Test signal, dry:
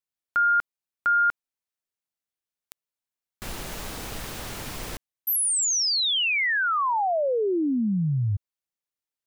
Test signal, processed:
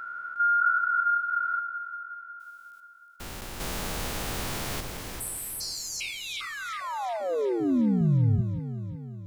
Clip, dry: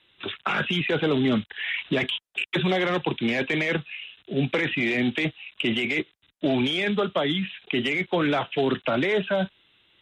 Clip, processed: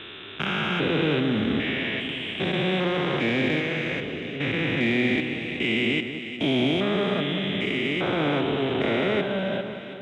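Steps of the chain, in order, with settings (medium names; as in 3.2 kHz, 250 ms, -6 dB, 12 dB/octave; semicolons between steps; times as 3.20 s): spectrogram pixelated in time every 400 ms; echo whose repeats swap between lows and highs 181 ms, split 1.5 kHz, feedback 74%, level -7.5 dB; trim +4 dB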